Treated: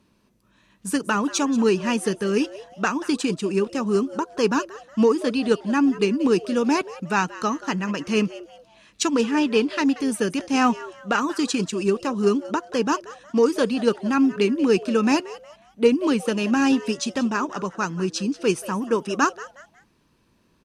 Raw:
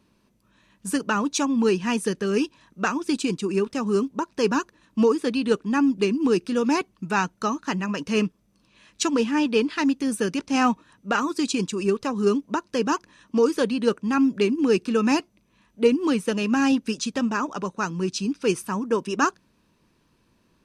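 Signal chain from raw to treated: added harmonics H 7 -39 dB, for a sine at -6.5 dBFS; frequency-shifting echo 0.182 s, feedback 33%, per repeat +150 Hz, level -17.5 dB; gain +1.5 dB

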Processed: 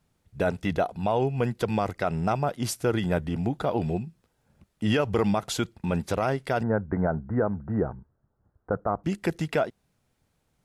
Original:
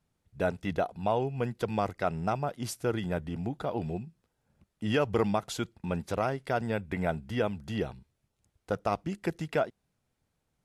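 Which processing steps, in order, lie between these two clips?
6.63–9.04 steep low-pass 1600 Hz 48 dB/oct; limiter -21 dBFS, peak gain reduction 6.5 dB; gain +6.5 dB

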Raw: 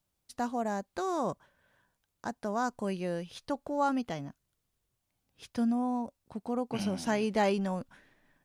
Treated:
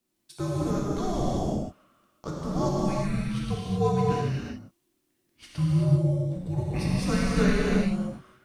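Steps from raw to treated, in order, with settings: non-linear reverb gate 0.41 s flat, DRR -6 dB; frequency shift -390 Hz

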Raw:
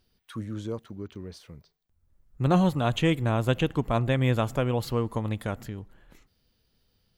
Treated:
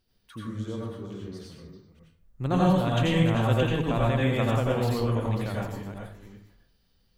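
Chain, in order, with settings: reverse delay 0.285 s, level -8.5 dB; reverb RT60 0.50 s, pre-delay 79 ms, DRR -4 dB; gain -5 dB

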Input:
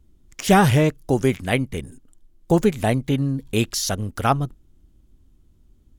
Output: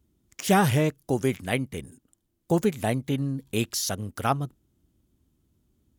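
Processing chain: HPF 83 Hz 12 dB/oct; high shelf 10000 Hz +7 dB; gain -5.5 dB

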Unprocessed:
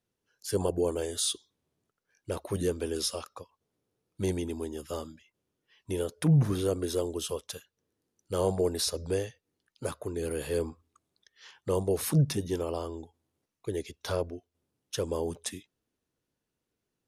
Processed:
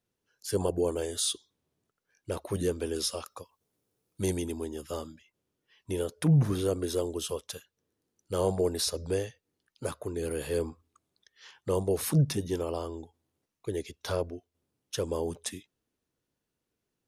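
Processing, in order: 3.24–4.52 high shelf 6700 Hz +10 dB

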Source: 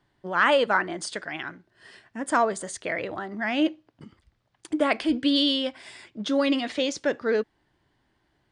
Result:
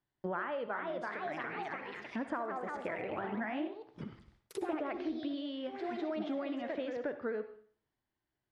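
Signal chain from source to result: gate with hold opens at -50 dBFS; echoes that change speed 0.409 s, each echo +2 st, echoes 3, each echo -6 dB; compressor 16:1, threshold -35 dBFS, peak gain reduction 20 dB; treble ducked by the level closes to 1800 Hz, closed at -39 dBFS; on a send: reverb RT60 0.50 s, pre-delay 57 ms, DRR 10 dB; on the sum: gain +1.5 dB

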